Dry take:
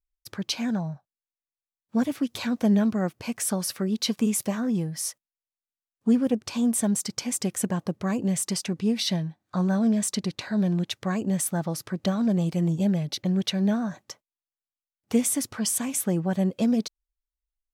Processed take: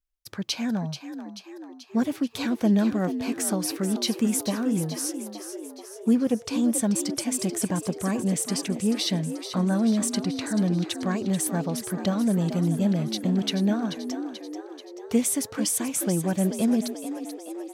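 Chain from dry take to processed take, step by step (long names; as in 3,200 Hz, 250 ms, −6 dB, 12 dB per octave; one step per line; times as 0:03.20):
echo with shifted repeats 435 ms, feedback 59%, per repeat +52 Hz, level −10 dB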